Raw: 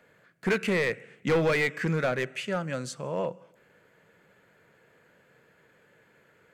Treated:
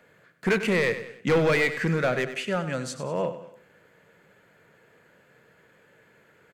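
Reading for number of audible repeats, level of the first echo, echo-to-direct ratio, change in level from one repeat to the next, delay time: 3, −12.0 dB, −11.0 dB, −7.0 dB, 97 ms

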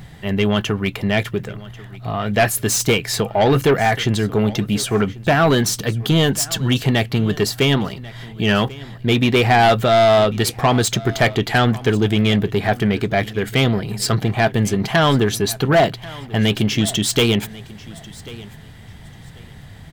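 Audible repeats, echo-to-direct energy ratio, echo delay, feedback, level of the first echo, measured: 2, −20.0 dB, 1,091 ms, 21%, −20.0 dB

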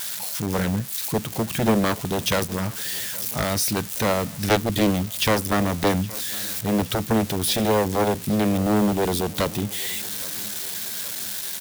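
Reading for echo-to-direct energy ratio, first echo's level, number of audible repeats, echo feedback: −19.5 dB, −21.0 dB, 3, 55%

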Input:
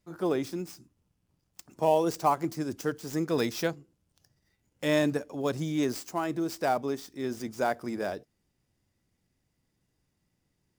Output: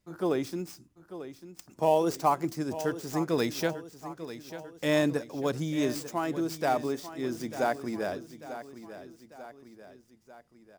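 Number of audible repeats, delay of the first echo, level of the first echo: 3, 894 ms, −13.0 dB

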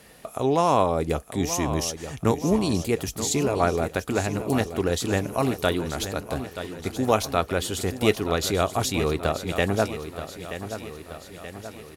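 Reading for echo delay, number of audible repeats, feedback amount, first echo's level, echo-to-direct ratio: 929 ms, 5, 56%, −11.0 dB, −9.5 dB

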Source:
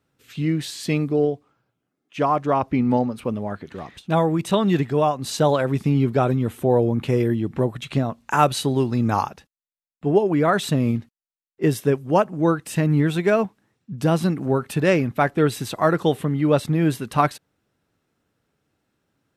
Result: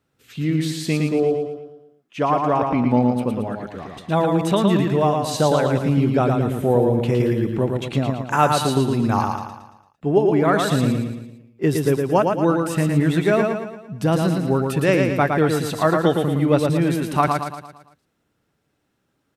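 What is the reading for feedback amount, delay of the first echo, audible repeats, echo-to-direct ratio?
47%, 113 ms, 5, −3.0 dB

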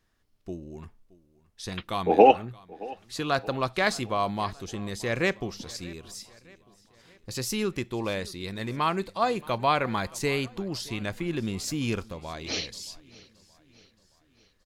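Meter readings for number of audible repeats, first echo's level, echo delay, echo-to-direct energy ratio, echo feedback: 3, −22.0 dB, 623 ms, −20.5 dB, 52%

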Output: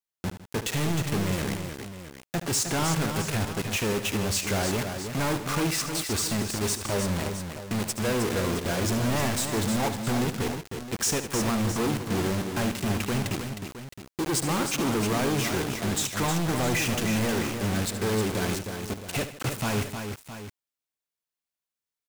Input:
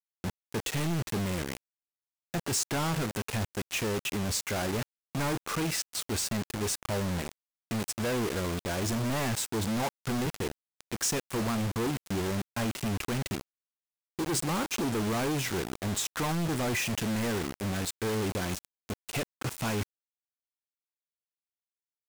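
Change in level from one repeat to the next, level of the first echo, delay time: repeats not evenly spaced, −11.5 dB, 74 ms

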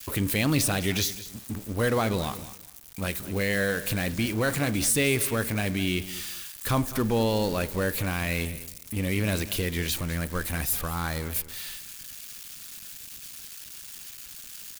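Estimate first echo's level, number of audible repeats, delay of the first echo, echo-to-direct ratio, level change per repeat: −16.0 dB, 2, 207 ms, −16.0 dB, −14.0 dB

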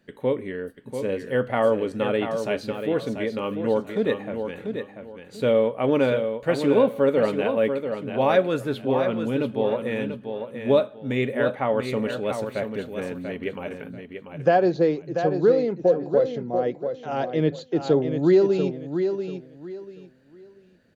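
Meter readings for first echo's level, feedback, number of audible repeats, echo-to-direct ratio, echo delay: −7.5 dB, 25%, 3, −7.0 dB, 689 ms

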